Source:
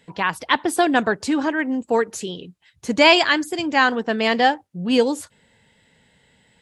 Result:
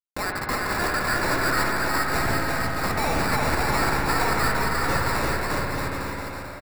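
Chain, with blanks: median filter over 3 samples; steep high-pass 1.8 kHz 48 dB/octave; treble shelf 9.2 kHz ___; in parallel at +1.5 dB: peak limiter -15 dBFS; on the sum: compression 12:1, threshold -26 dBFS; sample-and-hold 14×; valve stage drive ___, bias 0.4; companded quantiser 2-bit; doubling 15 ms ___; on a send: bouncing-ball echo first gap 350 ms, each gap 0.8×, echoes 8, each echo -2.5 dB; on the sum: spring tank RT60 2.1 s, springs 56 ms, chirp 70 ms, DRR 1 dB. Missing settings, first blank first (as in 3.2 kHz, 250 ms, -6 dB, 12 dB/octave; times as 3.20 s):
+5 dB, 24 dB, -13.5 dB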